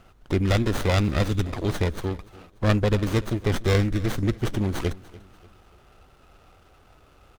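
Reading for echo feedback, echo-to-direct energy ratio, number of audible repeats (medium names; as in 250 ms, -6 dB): 40%, -20.0 dB, 2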